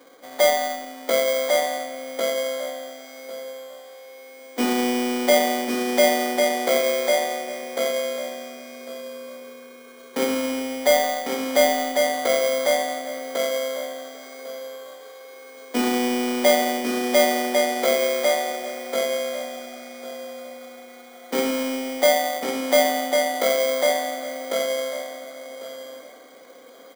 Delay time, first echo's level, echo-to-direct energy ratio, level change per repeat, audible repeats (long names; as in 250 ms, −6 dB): 1,099 ms, −3.5 dB, −3.5 dB, −15.0 dB, 3